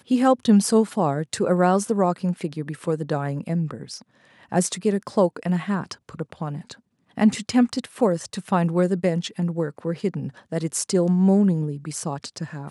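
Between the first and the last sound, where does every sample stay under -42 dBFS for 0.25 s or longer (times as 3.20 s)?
4.02–4.42 s
6.75–7.17 s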